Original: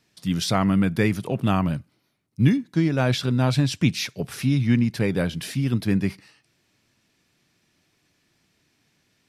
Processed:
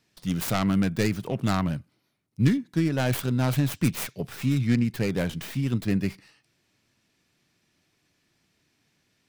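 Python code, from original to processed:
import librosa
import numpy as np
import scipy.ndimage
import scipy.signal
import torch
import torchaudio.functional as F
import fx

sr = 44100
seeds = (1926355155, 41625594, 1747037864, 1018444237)

y = fx.tracing_dist(x, sr, depth_ms=0.48)
y = F.gain(torch.from_numpy(y), -3.0).numpy()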